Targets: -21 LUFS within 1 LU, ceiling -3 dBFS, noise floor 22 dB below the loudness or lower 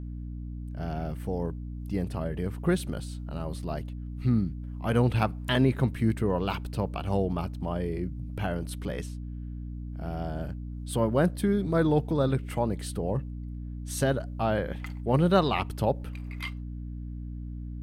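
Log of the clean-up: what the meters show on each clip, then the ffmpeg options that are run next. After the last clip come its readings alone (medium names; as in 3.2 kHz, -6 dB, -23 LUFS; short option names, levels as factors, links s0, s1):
hum 60 Hz; highest harmonic 300 Hz; hum level -34 dBFS; loudness -30.0 LUFS; peak level -8.5 dBFS; loudness target -21.0 LUFS
-> -af "bandreject=f=60:t=h:w=6,bandreject=f=120:t=h:w=6,bandreject=f=180:t=h:w=6,bandreject=f=240:t=h:w=6,bandreject=f=300:t=h:w=6"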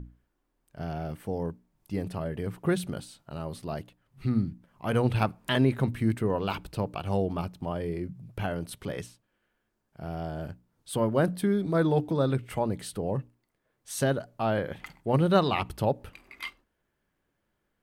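hum not found; loudness -30.0 LUFS; peak level -8.5 dBFS; loudness target -21.0 LUFS
-> -af "volume=2.82,alimiter=limit=0.708:level=0:latency=1"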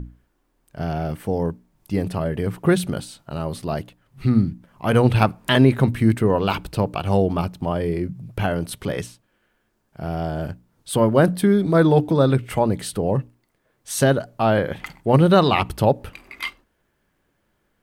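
loudness -21.0 LUFS; peak level -3.0 dBFS; noise floor -69 dBFS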